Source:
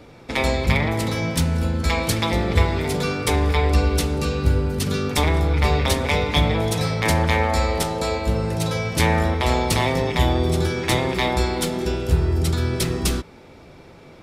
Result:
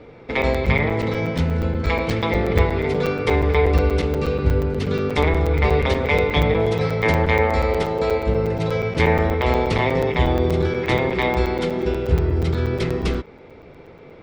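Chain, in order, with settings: LPF 3000 Hz 12 dB/oct; small resonant body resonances 450/2100 Hz, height 8 dB, ringing for 30 ms; crackling interface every 0.12 s, samples 256, zero, from 0.42

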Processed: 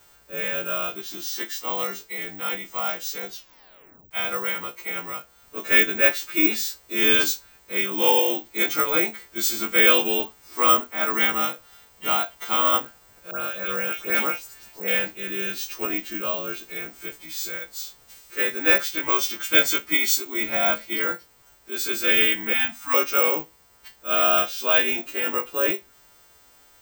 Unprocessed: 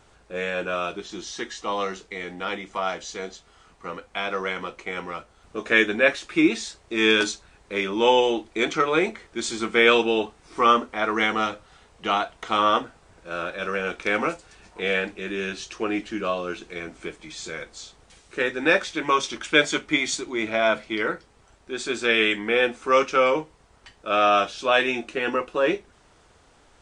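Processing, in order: frequency quantiser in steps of 2 st; 3.28 tape stop 0.83 s; 13.31–14.88 dispersion highs, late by 0.144 s, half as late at 2900 Hz; 22.53–22.94 elliptic band-stop 290–720 Hz, stop band 40 dB; careless resampling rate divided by 2×, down filtered, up zero stuff; gain -4 dB

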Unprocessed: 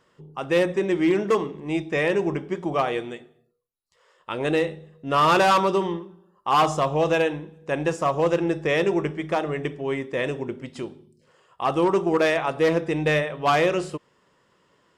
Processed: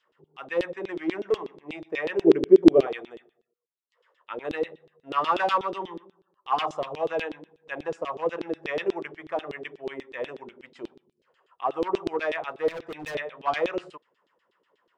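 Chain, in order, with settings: 2.24–2.87 resonant low shelf 610 Hz +13.5 dB, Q 3; LFO band-pass saw down 8.2 Hz 320–3900 Hz; 12.68–13.15 overloaded stage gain 32.5 dB

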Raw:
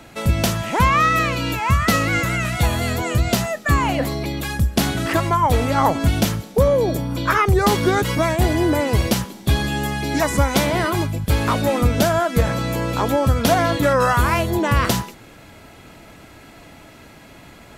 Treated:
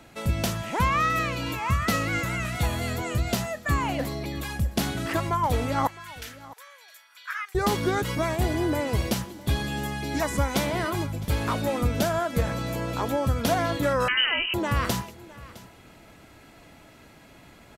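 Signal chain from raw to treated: 5.87–7.55 ladder high-pass 1400 Hz, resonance 45%; echo 0.661 s -19.5 dB; 14.08–14.54 inverted band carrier 3000 Hz; gain -7.5 dB

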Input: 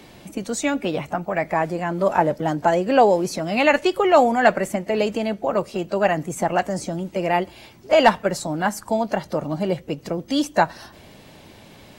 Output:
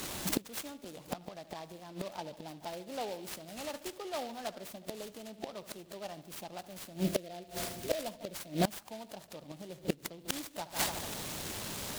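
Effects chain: EQ curve 1200 Hz 0 dB, 2100 Hz -11 dB, 3900 Hz +14 dB; on a send: dark delay 73 ms, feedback 64%, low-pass 3500 Hz, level -16 dB; on the sum: spectral gain 7.04–8.73, 730–4400 Hz -12 dB; flipped gate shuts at -17 dBFS, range -25 dB; noise-modulated delay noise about 3100 Hz, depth 0.065 ms; gain +1 dB

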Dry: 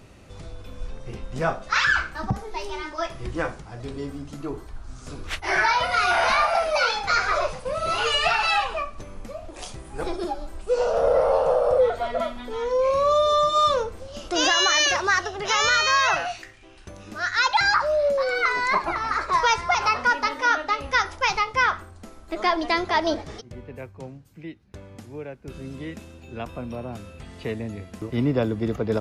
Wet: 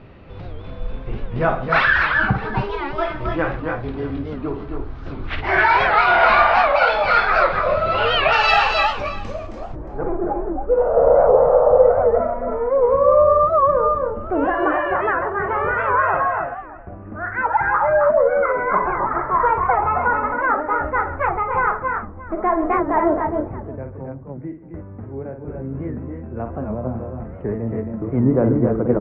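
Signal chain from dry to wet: Bessel low-pass 2300 Hz, order 8, from 8.31 s 4400 Hz, from 9.46 s 1000 Hz; tapped delay 52/133/268/291/625 ms -7.5/-16/-5.5/-6.5/-18.5 dB; record warp 78 rpm, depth 160 cents; gain +5.5 dB

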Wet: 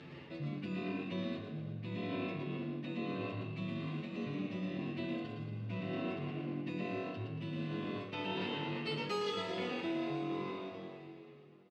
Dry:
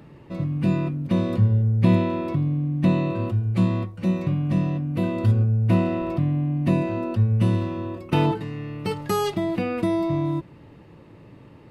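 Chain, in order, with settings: ending faded out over 3.78 s; air absorption 120 m; on a send: frequency-shifting echo 0.115 s, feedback 47%, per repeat +45 Hz, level -4.5 dB; on the sum: plate-style reverb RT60 2.8 s, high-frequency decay 0.9×, DRR 4.5 dB; reverse; compressor 12:1, threshold -31 dBFS, peak gain reduction 22 dB; reverse; weighting filter D; endless flanger 8.7 ms -0.82 Hz

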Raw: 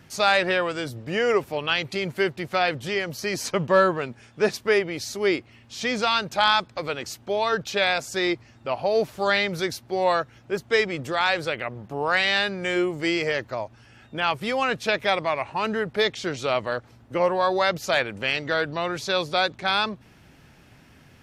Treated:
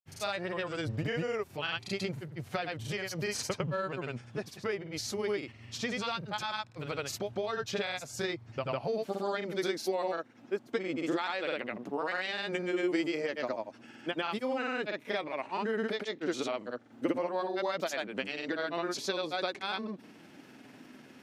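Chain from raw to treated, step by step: compressor 6:1, threshold -31 dBFS, peak gain reduction 16 dB; high-pass sweep 97 Hz -> 260 Hz, 8.56–9.2; grains, grains 20/s, pitch spread up and down by 0 st

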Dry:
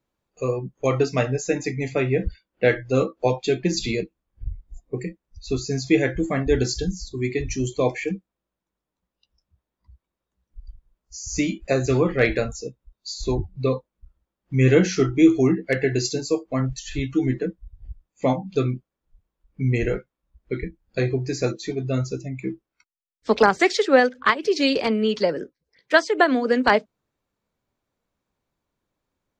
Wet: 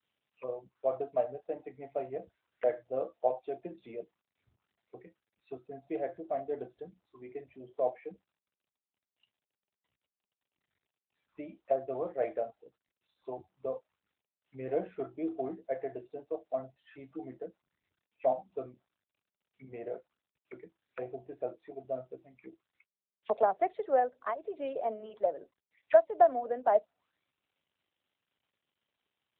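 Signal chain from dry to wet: auto-wah 670–3000 Hz, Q 6.2, down, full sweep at -24 dBFS; AMR-NB 12.2 kbps 8000 Hz

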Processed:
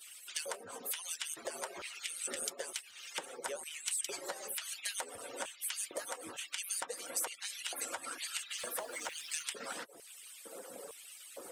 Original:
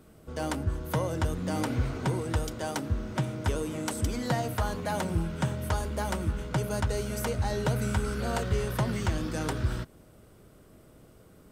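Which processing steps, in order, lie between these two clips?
median-filter separation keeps percussive; limiter -25.5 dBFS, peak gain reduction 8 dB; 2.02–2.42 spectral repair 590–1700 Hz both; LFO high-pass square 1.1 Hz 530–2700 Hz; dynamic EQ 1900 Hz, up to +5 dB, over -49 dBFS, Q 0.7; compressor 5:1, threshold -55 dBFS, peak gain reduction 23.5 dB; 8.58–9.43 requantised 12-bit, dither none; bell 8700 Hz +11 dB 1 oct; 5.99–6.49 three-band squash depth 40%; gain +12.5 dB

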